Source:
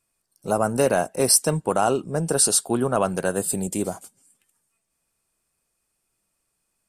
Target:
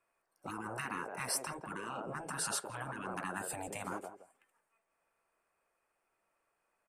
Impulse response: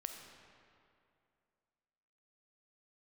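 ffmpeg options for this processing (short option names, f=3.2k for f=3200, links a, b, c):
-filter_complex "[0:a]acrossover=split=420 2600:gain=0.112 1 0.0891[a][b][c];[a][b][c]amix=inputs=3:normalize=0,acompressor=threshold=-27dB:ratio=6,equalizer=f=3.6k:t=o:w=0.94:g=-5.5,asplit=2[d][e];[e]adelay=167,lowpass=f=1.8k:p=1,volume=-15dB,asplit=2[f][g];[g]adelay=167,lowpass=f=1.8k:p=1,volume=0.18[h];[d][f][h]amix=inputs=3:normalize=0,afftfilt=real='re*lt(hypot(re,im),0.0398)':imag='im*lt(hypot(re,im),0.0398)':win_size=1024:overlap=0.75,volume=5dB"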